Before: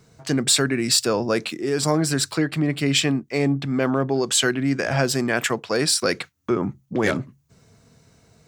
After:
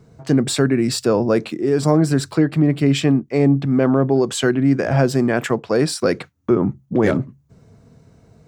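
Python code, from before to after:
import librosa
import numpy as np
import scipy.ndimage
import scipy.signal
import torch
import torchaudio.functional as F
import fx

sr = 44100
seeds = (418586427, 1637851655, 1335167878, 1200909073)

y = fx.tilt_shelf(x, sr, db=7.0, hz=1300.0)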